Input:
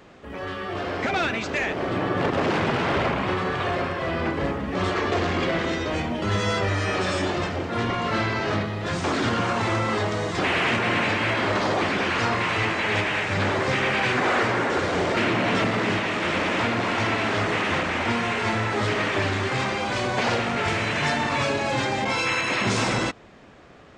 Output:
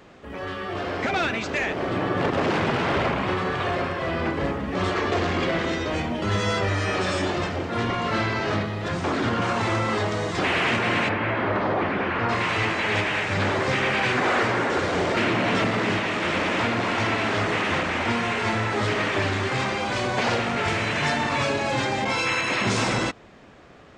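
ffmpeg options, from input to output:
ffmpeg -i in.wav -filter_complex "[0:a]asettb=1/sr,asplit=3[link_01][link_02][link_03];[link_01]atrim=end=8.884[link_04];[link_02]atrim=start=8.88:end=9.42,asetpts=PTS-STARTPTS,afade=type=in:duration=0.004:curve=qsin,afade=type=out:start_time=0.536:duration=0.004:curve=qsin,equalizer=frequency=8300:width=0.38:gain=-6.5[link_05];[link_03]atrim=start=9.416[link_06];[link_04][link_05]acrossfade=duration=0.004:curve1=hsin:curve2=qsin[link_07];[link_07][link_06]acrossfade=duration=0.004:curve1=qsin:curve2=hsin,asplit=3[link_08][link_09][link_10];[link_08]afade=type=out:start_time=11.08:duration=0.02[link_11];[link_09]lowpass=2000,afade=type=in:start_time=11.08:duration=0.02,afade=type=out:start_time=12.28:duration=0.02[link_12];[link_10]afade=type=in:start_time=12.28:duration=0.02[link_13];[link_11][link_12][link_13]amix=inputs=3:normalize=0" out.wav

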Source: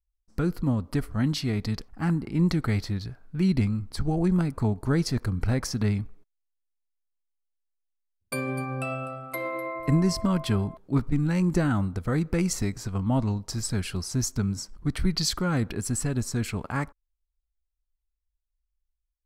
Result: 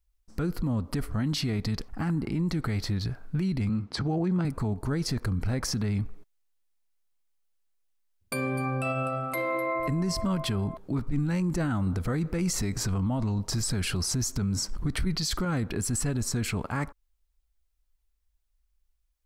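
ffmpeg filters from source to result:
ffmpeg -i in.wav -filter_complex "[0:a]asettb=1/sr,asplit=3[link_01][link_02][link_03];[link_01]atrim=end=3.694[link_04];[link_02]atrim=start=3.69:end=4.45,asetpts=PTS-STARTPTS,afade=type=in:duration=0.004:curve=qsin,afade=type=out:start_time=0.756:duration=0.004:curve=qsin,highpass=140,lowpass=4900[link_05];[link_03]atrim=start=4.446[link_06];[link_04][link_05]acrossfade=duration=0.004:curve1=hsin:curve2=qsin[link_07];[link_07][link_06]acrossfade=duration=0.004:curve1=qsin:curve2=hsin,asplit=3[link_08][link_09][link_10];[link_08]atrim=end=11.872[link_11];[link_09]atrim=start=11.868:end=15.452,asetpts=PTS-STARTPTS,volume=6.5dB[link_12];[link_10]atrim=start=15.448[link_13];[link_11][link_12]acrossfade=duration=0.004:curve1=hsin:curve2=hsin[link_14];[link_14][link_13]acrossfade=duration=0.004:curve1=hsin:curve2=hsin,acompressor=threshold=-33dB:ratio=2,alimiter=level_in=5dB:limit=-24dB:level=0:latency=1:release=20,volume=-5dB,volume=8dB" out.wav

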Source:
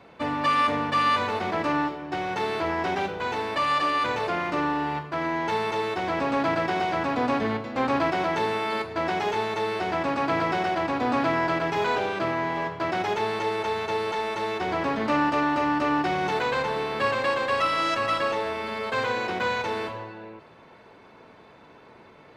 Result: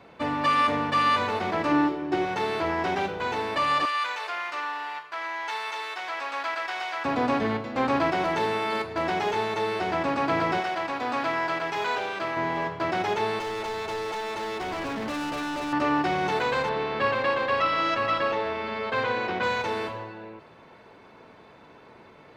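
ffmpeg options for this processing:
ffmpeg -i in.wav -filter_complex "[0:a]asettb=1/sr,asplit=3[link_01][link_02][link_03];[link_01]atrim=end=1.714[link_04];[link_02]atrim=start=1.71:end=2.25,asetpts=PTS-STARTPTS,afade=type=in:duration=0.004:curve=qsin,afade=type=out:start_time=0.536:duration=0.004:curve=qsin,equalizer=frequency=340:width_type=o:width=0.44:gain=11.5[link_05];[link_03]atrim=start=2.246[link_06];[link_04][link_05]acrossfade=duration=0.004:curve1=hsin:curve2=qsin[link_07];[link_07][link_06]acrossfade=duration=0.004:curve1=qsin:curve2=hsin,asettb=1/sr,asplit=3[link_08][link_09][link_10];[link_08]atrim=end=3.854[link_11];[link_09]atrim=start=3.85:end=7.05,asetpts=PTS-STARTPTS,afade=type=in:duration=0.004:curve=qsin,afade=type=out:start_time=3.196:duration=0.004:curve=qsin,highpass=1100[link_12];[link_10]atrim=start=7.046[link_13];[link_11][link_12]acrossfade=duration=0.004:curve1=hsin:curve2=qsin[link_14];[link_14][link_13]acrossfade=duration=0.004:curve1=qsin:curve2=hsin,asettb=1/sr,asplit=3[link_15][link_16][link_17];[link_15]atrim=end=8.214[link_18];[link_16]atrim=start=8.21:end=9.4,asetpts=PTS-STARTPTS,afade=type=in:duration=0.004:curve=qsin,afade=type=out:start_time=1.186:duration=0.004:curve=qsin,asoftclip=type=hard:threshold=-19dB[link_19];[link_17]atrim=start=9.396[link_20];[link_18][link_19]acrossfade=duration=0.004:curve1=hsin:curve2=qsin[link_21];[link_21][link_20]acrossfade=duration=0.004:curve1=qsin:curve2=hsin,asettb=1/sr,asplit=3[link_22][link_23][link_24];[link_22]atrim=end=10.604[link_25];[link_23]atrim=start=10.6:end=12.37,asetpts=PTS-STARTPTS,afade=type=in:duration=0.004:curve=qsin,afade=type=out:start_time=1.766:duration=0.004:curve=qsin,lowshelf=frequency=430:gain=-12[link_26];[link_24]atrim=start=12.366[link_27];[link_25][link_26]acrossfade=duration=0.004:curve1=hsin:curve2=qsin[link_28];[link_28][link_27]acrossfade=duration=0.004:curve1=qsin:curve2=hsin,asettb=1/sr,asplit=3[link_29][link_30][link_31];[link_29]atrim=end=13.394[link_32];[link_30]atrim=start=13.39:end=15.73,asetpts=PTS-STARTPTS,afade=type=in:duration=0.004:curve=qsin,afade=type=out:start_time=2.336:duration=0.004:curve=qsin,volume=29dB,asoftclip=hard,volume=-29dB[link_33];[link_31]atrim=start=15.726[link_34];[link_32][link_33]acrossfade=duration=0.004:curve1=hsin:curve2=qsin[link_35];[link_35][link_34]acrossfade=duration=0.004:curve1=qsin:curve2=hsin,asettb=1/sr,asplit=3[link_36][link_37][link_38];[link_36]atrim=end=16.694[link_39];[link_37]atrim=start=16.69:end=19.43,asetpts=PTS-STARTPTS,afade=type=in:duration=0.004:curve=qsin,afade=type=out:start_time=2.736:duration=0.004:curve=qsin,lowpass=4200[link_40];[link_38]atrim=start=19.426[link_41];[link_39][link_40]acrossfade=duration=0.004:curve1=hsin:curve2=qsin[link_42];[link_42][link_41]acrossfade=duration=0.004:curve1=qsin:curve2=hsin" out.wav

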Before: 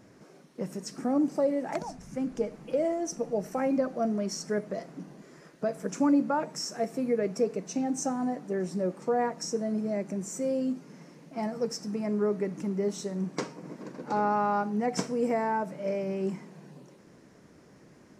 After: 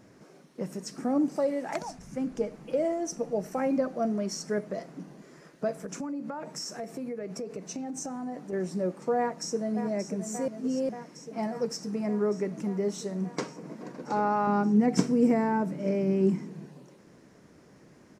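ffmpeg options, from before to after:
ffmpeg -i in.wav -filter_complex "[0:a]asettb=1/sr,asplit=3[link_01][link_02][link_03];[link_01]atrim=end=1.364[link_04];[link_02]atrim=start=1.36:end=1.99,asetpts=PTS-STARTPTS,afade=type=in:duration=0.004:curve=qsin,afade=type=out:start_time=0.626:duration=0.004:curve=qsin,tiltshelf=frequency=760:gain=-3.5[link_05];[link_03]atrim=start=1.986[link_06];[link_04][link_05]acrossfade=duration=0.004:curve1=hsin:curve2=qsin[link_07];[link_07][link_06]acrossfade=duration=0.004:curve1=qsin:curve2=hsin,asettb=1/sr,asplit=3[link_08][link_09][link_10];[link_08]atrim=end=5.764[link_11];[link_09]atrim=start=5.76:end=8.53,asetpts=PTS-STARTPTS,afade=type=in:duration=0.004:curve=qsin,afade=type=out:start_time=2.766:duration=0.004:curve=qsin,acompressor=threshold=-32dB:ratio=8:attack=3.2:release=140:knee=1:detection=peak[link_12];[link_10]atrim=start=8.526[link_13];[link_11][link_12]acrossfade=duration=0.004:curve1=hsin:curve2=qsin[link_14];[link_14][link_13]acrossfade=duration=0.004:curve1=qsin:curve2=hsin,asplit=2[link_15][link_16];[link_16]afade=type=in:start_time=9.18:duration=0.01,afade=type=out:start_time=9.78:duration=0.01,aecho=0:1:580|1160|1740|2320|2900|3480|4060|4640|5220|5800|6380|6960:0.334965|0.267972|0.214378|0.171502|0.137202|0.109761|0.0878092|0.0702473|0.0561979|0.0449583|0.0359666|0.0287733[link_17];[link_15][link_17]amix=inputs=2:normalize=0,asettb=1/sr,asplit=3[link_18][link_19][link_20];[link_18]atrim=end=14.474[link_21];[link_19]atrim=start=14.47:end=16.66,asetpts=PTS-STARTPTS,afade=type=in:duration=0.004:curve=qsin,afade=type=out:start_time=2.186:duration=0.004:curve=qsin,lowshelf=frequency=430:width_type=q:width=1.5:gain=7[link_22];[link_20]atrim=start=16.656[link_23];[link_21][link_22]acrossfade=duration=0.004:curve1=hsin:curve2=qsin[link_24];[link_24][link_23]acrossfade=duration=0.004:curve1=qsin:curve2=hsin,asplit=3[link_25][link_26][link_27];[link_25]atrim=end=10.482[link_28];[link_26]atrim=start=10.478:end=10.892,asetpts=PTS-STARTPTS,areverse[link_29];[link_27]atrim=start=10.888[link_30];[link_28][link_29]acrossfade=duration=0.004:curve1=hsin:curve2=hsin[link_31];[link_31][link_30]acrossfade=duration=0.004:curve1=hsin:curve2=hsin" out.wav

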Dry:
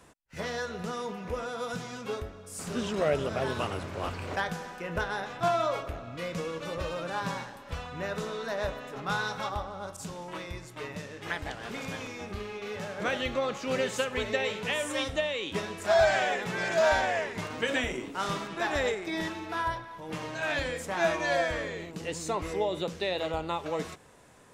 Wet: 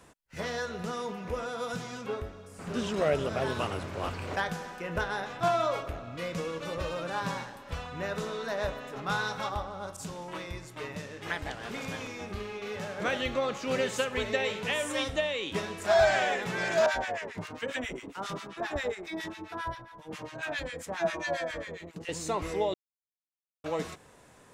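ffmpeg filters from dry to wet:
ffmpeg -i in.wav -filter_complex "[0:a]asettb=1/sr,asplit=3[link_01][link_02][link_03];[link_01]atrim=end=2.064[link_04];[link_02]atrim=start=2.06:end=2.74,asetpts=PTS-STARTPTS,afade=type=in:duration=0.004:curve=qsin,afade=type=out:start_time=0.676:duration=0.004:curve=qsin,acrossover=split=3000[link_05][link_06];[link_06]acompressor=threshold=-57dB:ratio=4:attack=1:release=60[link_07];[link_05][link_07]amix=inputs=2:normalize=0[link_08];[link_03]atrim=start=2.736[link_09];[link_04][link_08]acrossfade=duration=0.004:curve1=hsin:curve2=qsin[link_10];[link_10][link_09]acrossfade=duration=0.004:curve1=qsin:curve2=hsin,asettb=1/sr,asplit=3[link_11][link_12][link_13];[link_11]atrim=end=16.864[link_14];[link_12]atrim=start=16.86:end=22.09,asetpts=PTS-STARTPTS,afade=type=in:duration=0.004:curve=qsin,afade=type=out:start_time=5.226:duration=0.004:curve=qsin,acrossover=split=1100[link_15][link_16];[link_15]aeval=exprs='val(0)*(1-1/2+1/2*cos(2*PI*7.4*n/s))':channel_layout=same[link_17];[link_16]aeval=exprs='val(0)*(1-1/2-1/2*cos(2*PI*7.4*n/s))':channel_layout=same[link_18];[link_17][link_18]amix=inputs=2:normalize=0[link_19];[link_13]atrim=start=22.086[link_20];[link_14][link_19]acrossfade=duration=0.004:curve1=hsin:curve2=qsin[link_21];[link_21][link_20]acrossfade=duration=0.004:curve1=qsin:curve2=hsin,asplit=3[link_22][link_23][link_24];[link_22]atrim=end=22.74,asetpts=PTS-STARTPTS,afade=type=out:start_time=22.736:duration=0.004:curve=hsin[link_25];[link_23]atrim=start=22.74:end=23.64,asetpts=PTS-STARTPTS,volume=0[link_26];[link_24]atrim=start=23.64,asetpts=PTS-STARTPTS,afade=type=in:duration=0.004:curve=hsin[link_27];[link_25][link_26][link_27]concat=n=3:v=0:a=1" out.wav

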